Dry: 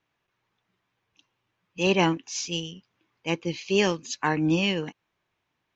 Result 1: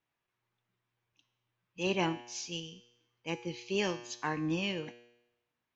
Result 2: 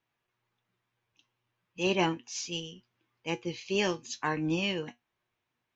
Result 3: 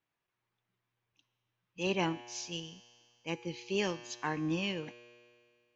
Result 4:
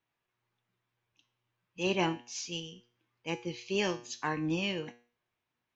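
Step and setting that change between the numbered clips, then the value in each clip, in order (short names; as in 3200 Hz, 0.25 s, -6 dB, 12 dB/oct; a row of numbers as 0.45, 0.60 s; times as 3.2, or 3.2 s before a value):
resonator, decay: 0.86, 0.16, 2.1, 0.41 s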